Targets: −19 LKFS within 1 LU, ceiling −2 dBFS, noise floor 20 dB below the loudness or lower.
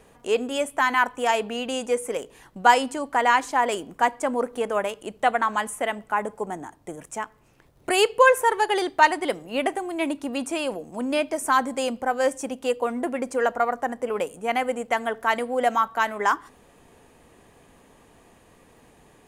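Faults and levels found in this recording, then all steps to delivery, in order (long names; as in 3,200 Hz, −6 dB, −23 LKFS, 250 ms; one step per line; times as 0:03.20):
crackle rate 19 per second; integrated loudness −24.0 LKFS; sample peak −3.0 dBFS; target loudness −19.0 LKFS
→ click removal
level +5 dB
brickwall limiter −2 dBFS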